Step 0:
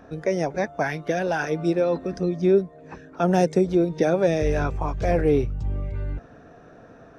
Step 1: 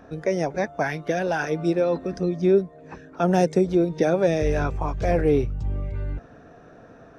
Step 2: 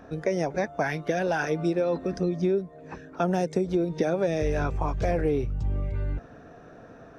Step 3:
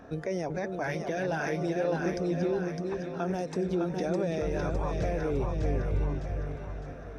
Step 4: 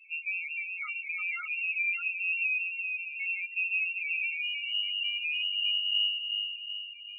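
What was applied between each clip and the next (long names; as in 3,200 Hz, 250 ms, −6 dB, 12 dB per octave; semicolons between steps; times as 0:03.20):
no processing that can be heard
downward compressor, threshold −21 dBFS, peak gain reduction 8 dB
brickwall limiter −21.5 dBFS, peak gain reduction 8.5 dB; on a send: echo with a time of its own for lows and highs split 500 Hz, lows 375 ms, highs 608 ms, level −4 dB; on the sum: level −1.5 dB
voice inversion scrambler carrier 2,900 Hz; spectral peaks only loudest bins 4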